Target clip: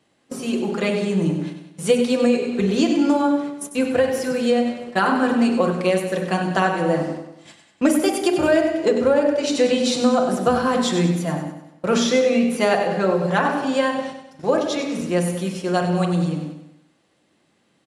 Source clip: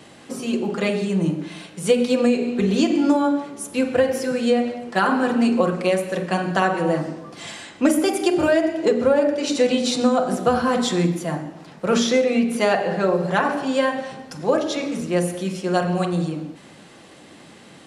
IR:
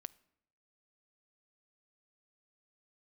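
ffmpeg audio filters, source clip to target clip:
-filter_complex "[0:a]agate=range=0.112:threshold=0.0251:ratio=16:detection=peak,asplit=2[s0][s1];[s1]aecho=0:1:97|194|291|388|485:0.355|0.167|0.0784|0.0368|0.0173[s2];[s0][s2]amix=inputs=2:normalize=0"

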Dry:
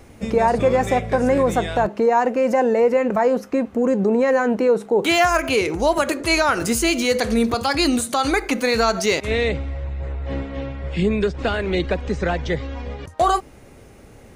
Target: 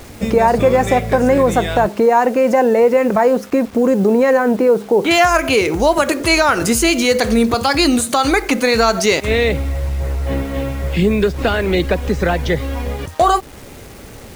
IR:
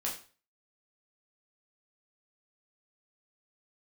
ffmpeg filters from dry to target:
-filter_complex "[0:a]asplit=2[s0][s1];[s1]acompressor=threshold=0.0501:ratio=6,volume=1[s2];[s0][s2]amix=inputs=2:normalize=0,asettb=1/sr,asplit=3[s3][s4][s5];[s3]atrim=end=4.374[s6];[s4]atrim=start=4.37:end=5.11,asetpts=PTS-STARTPTS,afade=t=in:d=0.004:c=qsin,afade=t=out:st=0.736:d=0.004:c=qsin,lowpass=f=1900:p=1[s7];[s5]atrim=start=5.106[s8];[s6][s7]acrossfade=d=0.004:c1=hsin:c2=qsin[s9];[s9][s8]acrossfade=d=0.004:c1=qsin:c2=hsin,acrusher=bits=6:mix=0:aa=0.000001,volume=1.33"

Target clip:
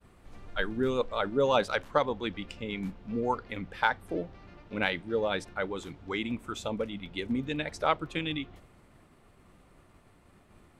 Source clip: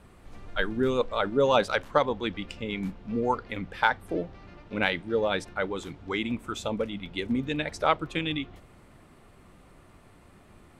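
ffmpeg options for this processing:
-af "agate=range=0.0224:threshold=0.00282:ratio=3:detection=peak,volume=0.708"

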